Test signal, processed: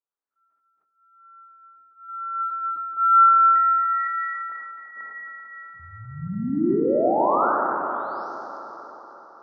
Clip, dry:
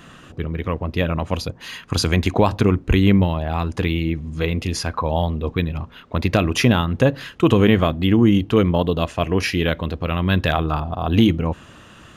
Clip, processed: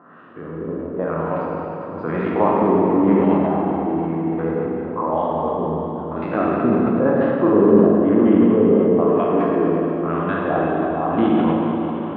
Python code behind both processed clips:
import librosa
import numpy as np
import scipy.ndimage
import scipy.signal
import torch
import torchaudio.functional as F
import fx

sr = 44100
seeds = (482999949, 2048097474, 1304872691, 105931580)

p1 = fx.spec_steps(x, sr, hold_ms=50)
p2 = fx.filter_lfo_lowpass(p1, sr, shape='sine', hz=1.0, low_hz=320.0, high_hz=2700.0, q=1.4)
p3 = scipy.signal.sosfilt(scipy.signal.cheby1(2, 1.0, [270.0, 4100.0], 'bandpass', fs=sr, output='sos'), p2)
p4 = fx.high_shelf_res(p3, sr, hz=1900.0, db=-12.0, q=1.5)
p5 = p4 + fx.echo_wet_bandpass(p4, sr, ms=277, feedback_pct=74, hz=1000.0, wet_db=-18.0, dry=0)
p6 = fx.rev_schroeder(p5, sr, rt60_s=3.7, comb_ms=38, drr_db=-4.5)
p7 = fx.sustainer(p6, sr, db_per_s=29.0)
y = p7 * 10.0 ** (-2.0 / 20.0)